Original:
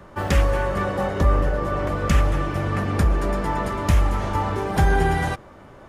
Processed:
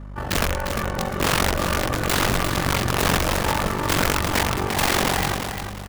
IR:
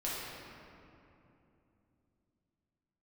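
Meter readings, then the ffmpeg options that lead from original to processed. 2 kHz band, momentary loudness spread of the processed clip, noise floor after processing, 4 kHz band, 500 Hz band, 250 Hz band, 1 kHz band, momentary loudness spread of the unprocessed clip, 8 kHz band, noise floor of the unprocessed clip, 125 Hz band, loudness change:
+5.0 dB, 5 LU, −33 dBFS, +12.0 dB, −1.0 dB, 0.0 dB, +1.0 dB, 4 LU, +12.5 dB, −45 dBFS, −4.0 dB, +0.5 dB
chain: -filter_complex "[0:a]equalizer=frequency=530:width=2.9:gain=-2,bandreject=frequency=60:width_type=h:width=6,bandreject=frequency=120:width_type=h:width=6,bandreject=frequency=180:width_type=h:width=6,bandreject=frequency=240:width_type=h:width=6,bandreject=frequency=300:width_type=h:width=6,bandreject=frequency=360:width_type=h:width=6,bandreject=frequency=420:width_type=h:width=6,bandreject=frequency=480:width_type=h:width=6,bandreject=frequency=540:width_type=h:width=6,bandreject=frequency=600:width_type=h:width=6,dynaudnorm=framelen=360:gausssize=7:maxgain=6.5dB,aeval=exprs='(mod(4.22*val(0)+1,2)-1)/4.22':channel_layout=same,aeval=exprs='val(0)*sin(2*PI*23*n/s)':channel_layout=same,aeval=exprs='val(0)+0.02*(sin(2*PI*50*n/s)+sin(2*PI*2*50*n/s)/2+sin(2*PI*3*50*n/s)/3+sin(2*PI*4*50*n/s)/4+sin(2*PI*5*50*n/s)/5)':channel_layout=same,aecho=1:1:350|700|1050|1400:0.447|0.143|0.0457|0.0146,asplit=2[link_01][link_02];[1:a]atrim=start_sample=2205[link_03];[link_02][link_03]afir=irnorm=-1:irlink=0,volume=-25dB[link_04];[link_01][link_04]amix=inputs=2:normalize=0,volume=-1dB"

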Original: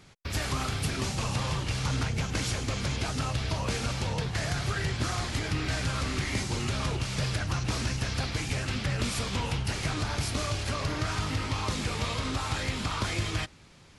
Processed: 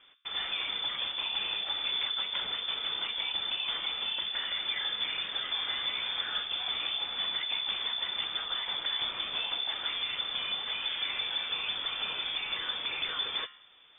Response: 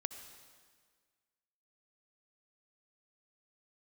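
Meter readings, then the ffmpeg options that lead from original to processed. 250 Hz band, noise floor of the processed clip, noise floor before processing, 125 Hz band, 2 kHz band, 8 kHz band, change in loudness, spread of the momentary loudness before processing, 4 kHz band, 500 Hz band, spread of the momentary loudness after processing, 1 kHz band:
−21.5 dB, −54 dBFS, −54 dBFS, below −30 dB, −2.0 dB, below −40 dB, −0.5 dB, 1 LU, +7.5 dB, −12.5 dB, 2 LU, −6.5 dB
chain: -af "bandreject=frequency=70.84:width_type=h:width=4,bandreject=frequency=141.68:width_type=h:width=4,bandreject=frequency=212.52:width_type=h:width=4,bandreject=frequency=283.36:width_type=h:width=4,bandreject=frequency=354.2:width_type=h:width=4,bandreject=frequency=425.04:width_type=h:width=4,bandreject=frequency=495.88:width_type=h:width=4,bandreject=frequency=566.72:width_type=h:width=4,bandreject=frequency=637.56:width_type=h:width=4,bandreject=frequency=708.4:width_type=h:width=4,bandreject=frequency=779.24:width_type=h:width=4,bandreject=frequency=850.08:width_type=h:width=4,bandreject=frequency=920.92:width_type=h:width=4,bandreject=frequency=991.76:width_type=h:width=4,bandreject=frequency=1062.6:width_type=h:width=4,bandreject=frequency=1133.44:width_type=h:width=4,bandreject=frequency=1204.28:width_type=h:width=4,bandreject=frequency=1275.12:width_type=h:width=4,bandreject=frequency=1345.96:width_type=h:width=4,bandreject=frequency=1416.8:width_type=h:width=4,bandreject=frequency=1487.64:width_type=h:width=4,bandreject=frequency=1558.48:width_type=h:width=4,bandreject=frequency=1629.32:width_type=h:width=4,bandreject=frequency=1700.16:width_type=h:width=4,bandreject=frequency=1771:width_type=h:width=4,bandreject=frequency=1841.84:width_type=h:width=4,bandreject=frequency=1912.68:width_type=h:width=4,bandreject=frequency=1983.52:width_type=h:width=4,bandreject=frequency=2054.36:width_type=h:width=4,bandreject=frequency=2125.2:width_type=h:width=4,bandreject=frequency=2196.04:width_type=h:width=4,bandreject=frequency=2266.88:width_type=h:width=4,bandreject=frequency=2337.72:width_type=h:width=4,bandreject=frequency=2408.56:width_type=h:width=4,bandreject=frequency=2479.4:width_type=h:width=4,bandreject=frequency=2550.24:width_type=h:width=4,lowpass=frequency=3100:width_type=q:width=0.5098,lowpass=frequency=3100:width_type=q:width=0.6013,lowpass=frequency=3100:width_type=q:width=0.9,lowpass=frequency=3100:width_type=q:width=2.563,afreqshift=-3600,volume=-3dB"

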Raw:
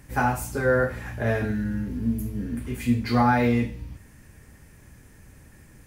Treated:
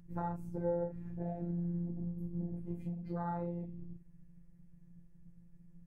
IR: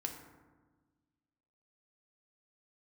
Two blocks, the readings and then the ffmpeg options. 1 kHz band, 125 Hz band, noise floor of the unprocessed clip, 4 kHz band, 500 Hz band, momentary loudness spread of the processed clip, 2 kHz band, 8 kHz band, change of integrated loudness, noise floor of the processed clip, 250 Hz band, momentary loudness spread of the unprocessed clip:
−17.5 dB, −11.5 dB, −52 dBFS, below −35 dB, −13.5 dB, 8 LU, −32.0 dB, below −35 dB, −14.5 dB, −59 dBFS, −14.0 dB, 11 LU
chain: -af "tiltshelf=frequency=700:gain=8,bandreject=frequency=50:width_type=h:width=6,bandreject=frequency=100:width_type=h:width=6,bandreject=frequency=150:width_type=h:width=6,bandreject=frequency=200:width_type=h:width=6,bandreject=frequency=250:width_type=h:width=6,bandreject=frequency=300:width_type=h:width=6,acompressor=threshold=-23dB:ratio=4,afwtdn=0.0316,afftfilt=real='hypot(re,im)*cos(PI*b)':imag='0':win_size=1024:overlap=0.75,volume=-6dB"

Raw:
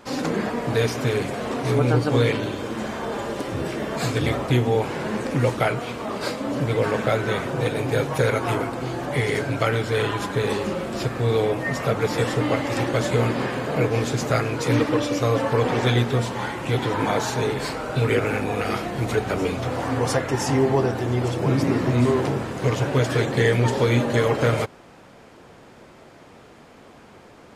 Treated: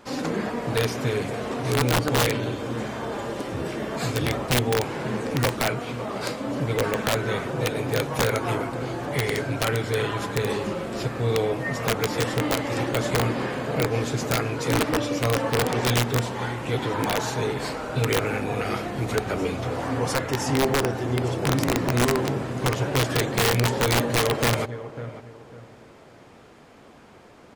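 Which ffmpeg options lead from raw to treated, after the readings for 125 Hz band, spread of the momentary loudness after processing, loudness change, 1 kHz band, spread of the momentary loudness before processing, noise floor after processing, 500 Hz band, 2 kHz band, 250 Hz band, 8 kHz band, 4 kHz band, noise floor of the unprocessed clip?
−3.0 dB, 8 LU, −2.0 dB, −1.0 dB, 7 LU, −49 dBFS, −3.0 dB, −0.5 dB, −3.0 dB, +4.0 dB, +2.0 dB, −48 dBFS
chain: -filter_complex "[0:a]asplit=2[link_01][link_02];[link_02]adelay=548,lowpass=frequency=1700:poles=1,volume=-13dB,asplit=2[link_03][link_04];[link_04]adelay=548,lowpass=frequency=1700:poles=1,volume=0.32,asplit=2[link_05][link_06];[link_06]adelay=548,lowpass=frequency=1700:poles=1,volume=0.32[link_07];[link_01][link_03][link_05][link_07]amix=inputs=4:normalize=0,aeval=exprs='(mod(3.76*val(0)+1,2)-1)/3.76':channel_layout=same,volume=-2.5dB"

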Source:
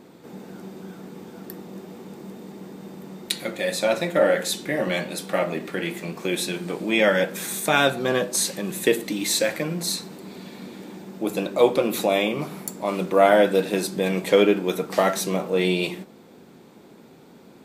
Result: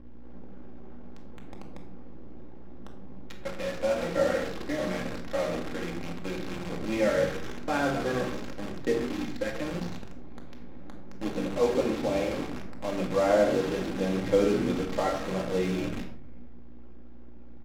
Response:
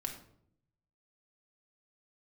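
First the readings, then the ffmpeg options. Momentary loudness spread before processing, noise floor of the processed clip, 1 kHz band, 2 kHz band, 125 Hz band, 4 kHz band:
21 LU, −39 dBFS, −7.5 dB, −10.0 dB, −4.0 dB, −12.5 dB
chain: -filter_complex "[0:a]acrossover=split=1900[link_01][link_02];[link_02]acompressor=threshold=-40dB:ratio=16[link_03];[link_01][link_03]amix=inputs=2:normalize=0,flanger=delay=9.9:depth=3.2:regen=-30:speed=0.63:shape=sinusoidal,asplit=8[link_04][link_05][link_06][link_07][link_08][link_09][link_10][link_11];[link_05]adelay=132,afreqshift=-73,volume=-10.5dB[link_12];[link_06]adelay=264,afreqshift=-146,volume=-15.2dB[link_13];[link_07]adelay=396,afreqshift=-219,volume=-20dB[link_14];[link_08]adelay=528,afreqshift=-292,volume=-24.7dB[link_15];[link_09]adelay=660,afreqshift=-365,volume=-29.4dB[link_16];[link_10]adelay=792,afreqshift=-438,volume=-34.2dB[link_17];[link_11]adelay=924,afreqshift=-511,volume=-38.9dB[link_18];[link_04][link_12][link_13][link_14][link_15][link_16][link_17][link_18]amix=inputs=8:normalize=0,aeval=exprs='val(0)+0.00794*(sin(2*PI*60*n/s)+sin(2*PI*2*60*n/s)/2+sin(2*PI*3*60*n/s)/3+sin(2*PI*4*60*n/s)/4+sin(2*PI*5*60*n/s)/5)':channel_layout=same,aresample=16000,acrusher=bits=6:dc=4:mix=0:aa=0.000001,aresample=44100,adynamicsmooth=sensitivity=6.5:basefreq=1400[link_19];[1:a]atrim=start_sample=2205,afade=type=out:start_time=0.21:duration=0.01,atrim=end_sample=9702[link_20];[link_19][link_20]afir=irnorm=-1:irlink=0,volume=-3.5dB"

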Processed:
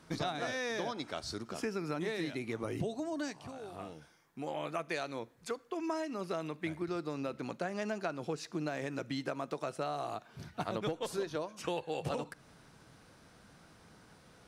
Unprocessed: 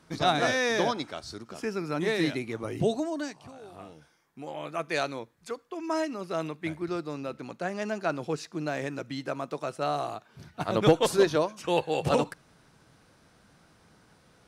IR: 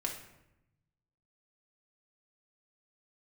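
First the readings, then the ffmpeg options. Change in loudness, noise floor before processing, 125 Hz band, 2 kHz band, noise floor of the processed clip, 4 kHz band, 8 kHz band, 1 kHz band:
−9.0 dB, −62 dBFS, −7.5 dB, −8.5 dB, −61 dBFS, −9.0 dB, −7.5 dB, −8.5 dB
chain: -filter_complex "[0:a]acompressor=threshold=-33dB:ratio=12,asplit=2[link_01][link_02];[1:a]atrim=start_sample=2205[link_03];[link_02][link_03]afir=irnorm=-1:irlink=0,volume=-21.5dB[link_04];[link_01][link_04]amix=inputs=2:normalize=0"

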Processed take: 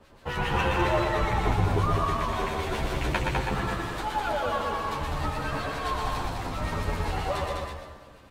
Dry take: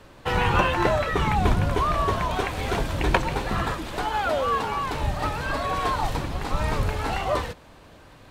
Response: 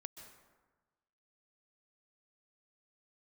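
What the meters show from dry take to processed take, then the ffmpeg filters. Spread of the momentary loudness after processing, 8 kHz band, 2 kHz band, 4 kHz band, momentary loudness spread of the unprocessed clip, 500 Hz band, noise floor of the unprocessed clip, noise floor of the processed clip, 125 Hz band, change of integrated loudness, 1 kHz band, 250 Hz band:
7 LU, −3.0 dB, −3.5 dB, −3.0 dB, 6 LU, −3.0 dB, −49 dBFS, −50 dBFS, −2.5 dB, −3.5 dB, −3.5 dB, −3.0 dB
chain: -filter_complex "[0:a]acrossover=split=1300[link_01][link_02];[link_01]aeval=exprs='val(0)*(1-0.7/2+0.7/2*cos(2*PI*7.4*n/s))':channel_layout=same[link_03];[link_02]aeval=exprs='val(0)*(1-0.7/2-0.7/2*cos(2*PI*7.4*n/s))':channel_layout=same[link_04];[link_03][link_04]amix=inputs=2:normalize=0,aecho=1:1:203:0.631,asplit=2[link_05][link_06];[1:a]atrim=start_sample=2205,adelay=121[link_07];[link_06][link_07]afir=irnorm=-1:irlink=0,volume=1.5dB[link_08];[link_05][link_08]amix=inputs=2:normalize=0,asplit=2[link_09][link_10];[link_10]adelay=10.4,afreqshift=-0.4[link_11];[link_09][link_11]amix=inputs=2:normalize=1"

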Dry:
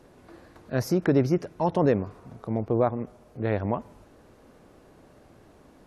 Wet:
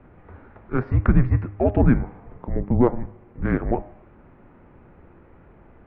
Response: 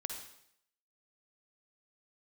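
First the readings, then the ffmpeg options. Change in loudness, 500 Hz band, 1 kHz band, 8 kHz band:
+4.0 dB, 0.0 dB, +0.5 dB, can't be measured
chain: -af "highpass=frequency=160:width_type=q:width=0.5412,highpass=frequency=160:width_type=q:width=1.307,lowpass=frequency=2600:width_type=q:width=0.5176,lowpass=frequency=2600:width_type=q:width=0.7071,lowpass=frequency=2600:width_type=q:width=1.932,afreqshift=-250,bandreject=frequency=101.8:width_type=h:width=4,bandreject=frequency=203.6:width_type=h:width=4,bandreject=frequency=305.4:width_type=h:width=4,bandreject=frequency=407.2:width_type=h:width=4,bandreject=frequency=509:width_type=h:width=4,bandreject=frequency=610.8:width_type=h:width=4,bandreject=frequency=712.6:width_type=h:width=4,bandreject=frequency=814.4:width_type=h:width=4,bandreject=frequency=916.2:width_type=h:width=4,bandreject=frequency=1018:width_type=h:width=4,bandreject=frequency=1119.8:width_type=h:width=4,bandreject=frequency=1221.6:width_type=h:width=4,bandreject=frequency=1323.4:width_type=h:width=4,bandreject=frequency=1425.2:width_type=h:width=4,bandreject=frequency=1527:width_type=h:width=4,bandreject=frequency=1628.8:width_type=h:width=4,bandreject=frequency=1730.6:width_type=h:width=4,bandreject=frequency=1832.4:width_type=h:width=4,bandreject=frequency=1934.2:width_type=h:width=4,bandreject=frequency=2036:width_type=h:width=4,bandreject=frequency=2137.8:width_type=h:width=4,bandreject=frequency=2239.6:width_type=h:width=4,bandreject=frequency=2341.4:width_type=h:width=4,bandreject=frequency=2443.2:width_type=h:width=4,bandreject=frequency=2545:width_type=h:width=4,bandreject=frequency=2646.8:width_type=h:width=4,bandreject=frequency=2748.6:width_type=h:width=4,aeval=exprs='0.282*(cos(1*acos(clip(val(0)/0.282,-1,1)))-cos(1*PI/2))+0.00282*(cos(7*acos(clip(val(0)/0.282,-1,1)))-cos(7*PI/2))':channel_layout=same,volume=6.5dB"

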